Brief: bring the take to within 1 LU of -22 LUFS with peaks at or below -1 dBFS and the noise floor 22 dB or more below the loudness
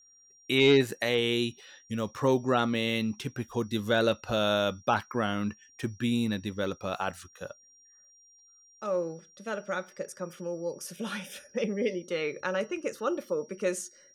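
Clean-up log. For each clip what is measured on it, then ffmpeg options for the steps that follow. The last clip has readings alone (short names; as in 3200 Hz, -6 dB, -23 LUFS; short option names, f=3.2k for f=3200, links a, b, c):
steady tone 5700 Hz; tone level -57 dBFS; loudness -30.0 LUFS; peak -13.0 dBFS; loudness target -22.0 LUFS
-> -af "bandreject=f=5.7k:w=30"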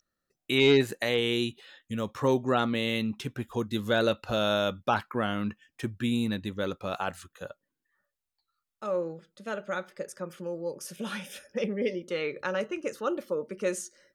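steady tone none; loudness -30.0 LUFS; peak -13.0 dBFS; loudness target -22.0 LUFS
-> -af "volume=8dB"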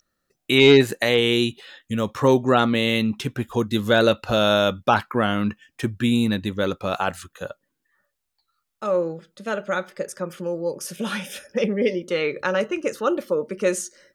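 loudness -22.0 LUFS; peak -5.0 dBFS; noise floor -78 dBFS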